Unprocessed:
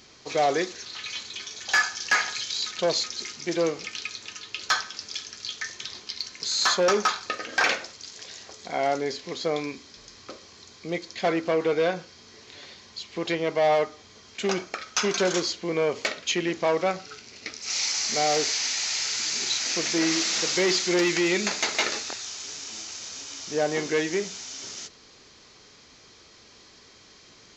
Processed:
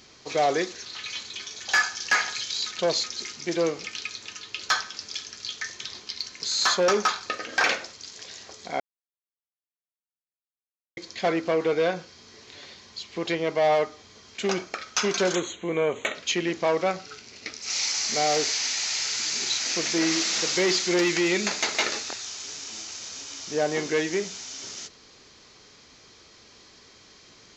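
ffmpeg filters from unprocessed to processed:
-filter_complex "[0:a]asettb=1/sr,asplit=3[a][b][c];[a]atrim=end=15.354[d];[b]atrim=start=15.35:end=16.15,asetpts=PTS-STARTPTS,afade=t=in:d=0.004:c=qsin,afade=t=out:st=0.796:d=0.004:c=qsin,asuperstop=centerf=5000:order=8:qfactor=2.1[e];[c]atrim=start=16.146[f];[d][e]acrossfade=d=0.004:c1=hsin:c2=qsin[g];[g][f]acrossfade=d=0.004:c1=qsin:c2=hsin,asplit=3[h][i][j];[h]atrim=end=8.8,asetpts=PTS-STARTPTS,afade=t=out:st=8.796:d=0.004:c=hsin[k];[i]atrim=start=8.8:end=10.97,asetpts=PTS-STARTPTS,volume=0[l];[j]atrim=start=10.97,asetpts=PTS-STARTPTS,afade=t=in:d=0.004:c=hsin[m];[k][l][m]concat=n=3:v=0:a=1"

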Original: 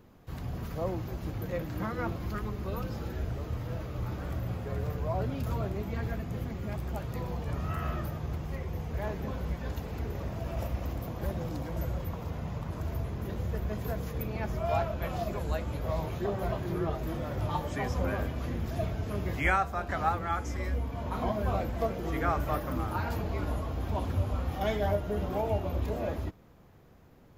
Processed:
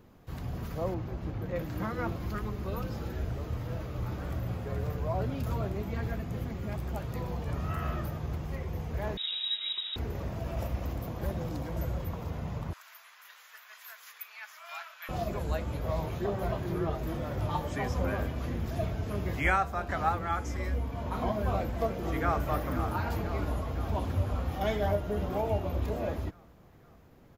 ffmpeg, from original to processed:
-filter_complex "[0:a]asettb=1/sr,asplit=3[a][b][c];[a]atrim=end=0.944[d];[b]atrim=start=0.94:end=1.56,asetpts=PTS-STARTPTS,afade=t=in:d=0.004:c=qsin,afade=t=out:st=0.616:d=0.004:c=qsin,lowpass=f=2.5k:p=1[e];[c]atrim=start=1.556[f];[d][e]acrossfade=d=0.004:c1=hsin:c2=qsin[g];[g][f]acrossfade=d=0.004:c1=qsin:c2=hsin,asettb=1/sr,asplit=3[h][i][j];[h]atrim=end=9.174[k];[i]atrim=start=9.17:end=9.96,asetpts=PTS-STARTPTS,afade=t=in:d=0.004:c=qsin,afade=t=out:st=0.786:d=0.004:c=qsin,lowpass=f=3.3k:t=q:w=0.5098,lowpass=f=3.3k:t=q:w=0.6013,lowpass=f=3.3k:t=q:w=0.9,lowpass=f=3.3k:t=q:w=2.563,afreqshift=-3900[l];[j]atrim=start=9.956[m];[k][l]acrossfade=d=0.004:c1=hsin:c2=qsin[n];[n][m]acrossfade=d=0.004:c1=qsin:c2=hsin,asettb=1/sr,asplit=3[o][p][q];[o]atrim=end=12.734[r];[p]atrim=start=12.73:end=15.09,asetpts=PTS-STARTPTS,afade=t=in:d=0.004:c=qsin,afade=t=out:st=2.356:d=0.004:c=qsin,highpass=f=1.3k:w=0.5412,highpass=f=1.3k:w=1.3066[s];[q]atrim=start=15.086[t];[r][s]acrossfade=d=0.004:c1=hsin:c2=qsin[u];[u][t]acrossfade=d=0.004:c1=qsin:c2=hsin,asplit=2[v][w];[w]afade=t=in:st=21.5:d=0.01,afade=t=out:st=22.47:d=0.01,aecho=0:1:510|1020|1530|2040|2550|3060|3570|4080|4590|5100:0.266073|0.186251|0.130376|0.0912629|0.063884|0.0447188|0.0313032|0.0219122|0.0153386|0.010737[x];[v][x]amix=inputs=2:normalize=0"

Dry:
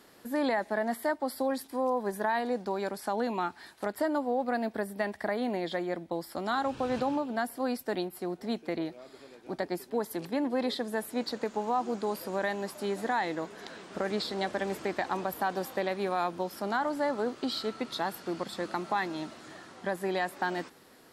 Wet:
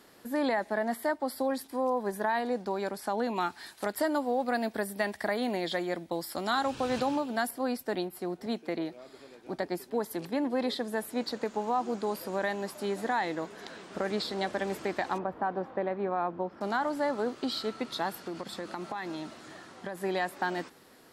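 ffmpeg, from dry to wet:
-filter_complex "[0:a]asettb=1/sr,asplit=3[a][b][c];[a]atrim=end=3.364[d];[b]atrim=start=3.36:end=7.51,asetpts=PTS-STARTPTS,afade=t=in:d=0.004:c=qsin,afade=t=out:st=4.146:d=0.004:c=qsin,highshelf=f=2.5k:g=8[e];[c]atrim=start=7.506[f];[d][e]acrossfade=d=0.004:c1=hsin:c2=qsin[g];[g][f]acrossfade=d=0.004:c1=qsin:c2=hsin,asettb=1/sr,asplit=3[h][i][j];[h]atrim=end=8.464[k];[i]atrim=start=8.46:end=8.93,asetpts=PTS-STARTPTS,afade=t=in:d=0.004:c=qsin,afade=t=out:st=0.466:d=0.004:c=qsin,highpass=140[l];[j]atrim=start=8.926[m];[k][l]acrossfade=d=0.004:c1=hsin:c2=qsin[n];[n][m]acrossfade=d=0.004:c1=qsin:c2=hsin,asettb=1/sr,asplit=3[o][p][q];[o]atrim=end=15.184[r];[p]atrim=start=15.18:end=16.61,asetpts=PTS-STARTPTS,afade=t=in:d=0.004:c=qsin,afade=t=out:st=1.426:d=0.004:c=qsin,lowpass=1.4k[s];[q]atrim=start=16.606[t];[r][s]acrossfade=d=0.004:c1=hsin:c2=qsin[u];[u][t]acrossfade=d=0.004:c1=qsin:c2=hsin,asettb=1/sr,asplit=3[v][w][x];[v]atrim=end=18.264[y];[w]atrim=start=18.26:end=19.98,asetpts=PTS-STARTPTS,afade=t=in:d=0.004:c=qsin,afade=t=out:st=1.716:d=0.004:c=qsin,acompressor=threshold=-32dB:ratio=5:attack=3.2:release=140:knee=1:detection=peak[z];[x]atrim=start=19.976[aa];[y][z]acrossfade=d=0.004:c1=hsin:c2=qsin[ab];[ab][aa]acrossfade=d=0.004:c1=qsin:c2=hsin"

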